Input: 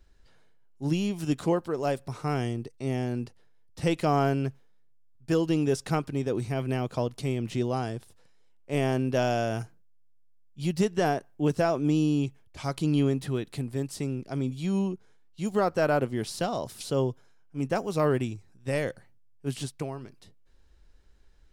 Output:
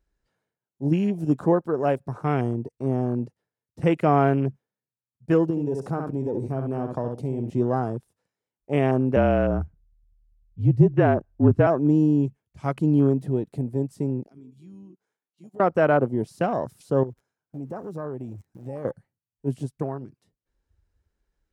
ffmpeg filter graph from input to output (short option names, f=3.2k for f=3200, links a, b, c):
-filter_complex "[0:a]asettb=1/sr,asplit=3[a][b][c];[a]atrim=end=5.504[d];[b]atrim=start=5.5:end=7.5,asetpts=PTS-STARTPTS,afade=t=in:d=0.004:c=qsin,afade=t=out:st=1.996:d=0.004:c=qsin,aecho=1:1:67|134:0.398|0.0597,atrim=end_sample=88200,acompressor=threshold=-29dB:ratio=3:attack=3.2:release=140:knee=1:detection=peak[e];[c]atrim=start=7.496[f];[d][e]acrossfade=d=0.004:c1=hsin:c2=qsin[g];[g][f]acrossfade=d=0.004:c1=qsin:c2=hsin,asettb=1/sr,asplit=3[h][i][j];[h]atrim=end=9.164[k];[i]atrim=start=9.16:end=11.67,asetpts=PTS-STARTPTS,afade=t=in:d=0.004:c=qsin,afade=t=out:st=2.506:d=0.004:c=qsin,afreqshift=-38,bass=f=250:g=6,treble=f=4k:g=-13[l];[j]atrim=start=11.666[m];[k][l]acrossfade=d=0.004:c1=hsin:c2=qsin[n];[n][m]acrossfade=d=0.004:c1=qsin:c2=hsin,asettb=1/sr,asplit=3[o][p][q];[o]atrim=end=14.264[r];[p]atrim=start=14.26:end=15.6,asetpts=PTS-STARTPTS,afade=t=in:d=0.004:c=qsin,afade=t=out:st=1.336:d=0.004:c=qsin,highpass=f=460:p=1,acompressor=threshold=-53dB:ratio=2.5:attack=3.2:release=140:knee=1:detection=peak[s];[q]atrim=start=15.596[t];[r][s]acrossfade=d=0.004:c1=hsin:c2=qsin[u];[u][t]acrossfade=d=0.004:c1=qsin:c2=hsin,asettb=1/sr,asplit=3[v][w][x];[v]atrim=end=17.034[y];[w]atrim=start=17.03:end=18.85,asetpts=PTS-STARTPTS,afade=t=in:d=0.004:c=qsin,afade=t=out:st=1.816:d=0.004:c=qsin,aeval=exprs='val(0)+0.5*0.00944*sgn(val(0))':c=same,acompressor=threshold=-39dB:ratio=3:attack=3.2:release=140:knee=1:detection=peak[z];[x]atrim=start=18.846[aa];[y][z]acrossfade=d=0.004:c1=hsin:c2=qsin[ab];[ab][aa]acrossfade=d=0.004:c1=qsin:c2=hsin,afwtdn=0.0112,highpass=96,equalizer=f=3.8k:w=1.1:g=-6,volume=5.5dB"